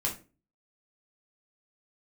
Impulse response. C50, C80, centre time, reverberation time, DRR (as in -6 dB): 10.0 dB, 16.5 dB, 19 ms, 0.35 s, -3.0 dB